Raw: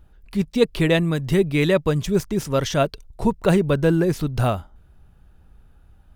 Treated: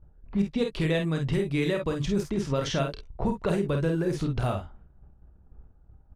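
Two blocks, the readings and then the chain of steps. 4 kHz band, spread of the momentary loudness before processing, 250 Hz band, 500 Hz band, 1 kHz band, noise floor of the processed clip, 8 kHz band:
-6.5 dB, 6 LU, -6.5 dB, -8.0 dB, -7.5 dB, -57 dBFS, -8.0 dB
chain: level-controlled noise filter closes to 850 Hz, open at -15 dBFS; low-pass 12 kHz 12 dB/octave; gate -48 dBFS, range -8 dB; compression, threshold -25 dBFS, peak gain reduction 13.5 dB; early reflections 30 ms -8.5 dB, 50 ms -5.5 dB, 64 ms -13.5 dB

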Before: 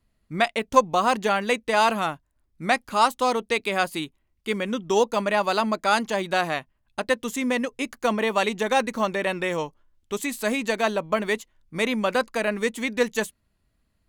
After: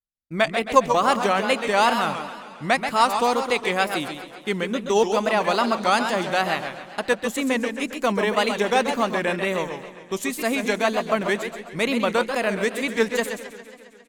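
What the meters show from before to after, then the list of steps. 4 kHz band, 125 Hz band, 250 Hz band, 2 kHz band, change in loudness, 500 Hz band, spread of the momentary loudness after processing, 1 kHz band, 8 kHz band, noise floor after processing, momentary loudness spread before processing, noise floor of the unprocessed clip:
+2.5 dB, +2.5 dB, +2.0 dB, +2.0 dB, +2.0 dB, +2.0 dB, 12 LU, +2.0 dB, +1.5 dB, -45 dBFS, 10 LU, -72 dBFS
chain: on a send: feedback delay 134 ms, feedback 28%, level -8 dB; on the sum: expander -39 dBFS; wow and flutter 130 cents; modulated delay 135 ms, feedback 70%, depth 148 cents, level -15 dB; trim +1 dB

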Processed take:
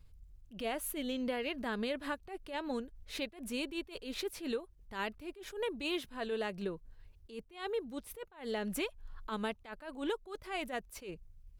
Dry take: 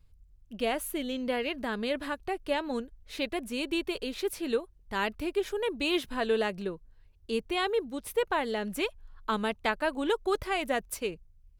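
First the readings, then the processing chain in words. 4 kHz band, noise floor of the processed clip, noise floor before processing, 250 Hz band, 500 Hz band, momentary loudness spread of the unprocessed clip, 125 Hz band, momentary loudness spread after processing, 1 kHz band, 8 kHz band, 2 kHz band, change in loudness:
-7.0 dB, -60 dBFS, -59 dBFS, -6.0 dB, -8.5 dB, 7 LU, -4.5 dB, 11 LU, -9.5 dB, -5.0 dB, -8.0 dB, -8.0 dB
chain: compression 4:1, threshold -37 dBFS, peak gain reduction 12.5 dB; attacks held to a fixed rise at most 150 dB/s; trim +3 dB

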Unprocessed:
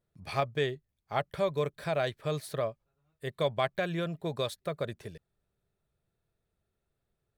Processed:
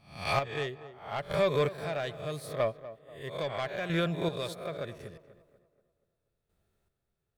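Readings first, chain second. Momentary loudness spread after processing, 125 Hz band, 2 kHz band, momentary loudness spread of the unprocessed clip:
15 LU, 0.0 dB, +1.5 dB, 9 LU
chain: reverse spectral sustain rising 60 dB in 0.46 s; saturation -23 dBFS, distortion -15 dB; square tremolo 0.77 Hz, depth 60%, duty 30%; tape echo 241 ms, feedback 47%, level -13 dB, low-pass 1.9 kHz; dynamic bell 2.3 kHz, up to +3 dB, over -47 dBFS, Q 0.88; trim +4 dB

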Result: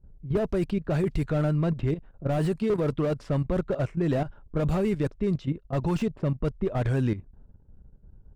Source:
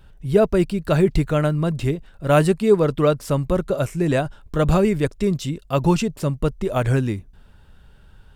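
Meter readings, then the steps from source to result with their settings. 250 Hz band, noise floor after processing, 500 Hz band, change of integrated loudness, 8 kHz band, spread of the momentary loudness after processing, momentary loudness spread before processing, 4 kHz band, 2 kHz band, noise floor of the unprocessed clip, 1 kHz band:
-6.0 dB, -57 dBFS, -9.0 dB, -7.0 dB, under -15 dB, 4 LU, 7 LU, -11.5 dB, -10.0 dB, -49 dBFS, -10.0 dB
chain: level-controlled noise filter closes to 370 Hz, open at -13 dBFS; level held to a coarse grid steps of 12 dB; slew-rate limiter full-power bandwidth 37 Hz

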